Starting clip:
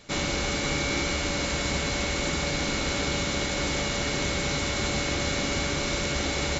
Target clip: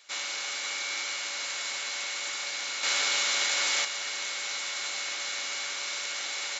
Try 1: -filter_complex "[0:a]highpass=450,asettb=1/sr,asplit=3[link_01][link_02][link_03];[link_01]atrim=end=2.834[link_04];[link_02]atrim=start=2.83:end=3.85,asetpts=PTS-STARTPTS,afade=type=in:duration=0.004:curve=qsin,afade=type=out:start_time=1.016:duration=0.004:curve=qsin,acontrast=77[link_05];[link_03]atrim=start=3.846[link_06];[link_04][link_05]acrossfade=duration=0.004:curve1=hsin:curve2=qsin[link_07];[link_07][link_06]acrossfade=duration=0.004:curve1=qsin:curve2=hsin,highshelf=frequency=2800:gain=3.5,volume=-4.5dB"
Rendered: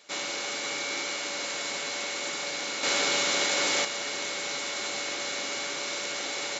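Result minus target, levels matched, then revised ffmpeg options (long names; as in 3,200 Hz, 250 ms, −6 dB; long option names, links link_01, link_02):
500 Hz band +10.0 dB
-filter_complex "[0:a]highpass=1100,asettb=1/sr,asplit=3[link_01][link_02][link_03];[link_01]atrim=end=2.834[link_04];[link_02]atrim=start=2.83:end=3.85,asetpts=PTS-STARTPTS,afade=type=in:duration=0.004:curve=qsin,afade=type=out:start_time=1.016:duration=0.004:curve=qsin,acontrast=77[link_05];[link_03]atrim=start=3.846[link_06];[link_04][link_05]acrossfade=duration=0.004:curve1=hsin:curve2=qsin[link_07];[link_07][link_06]acrossfade=duration=0.004:curve1=qsin:curve2=hsin,highshelf=frequency=2800:gain=3.5,volume=-4.5dB"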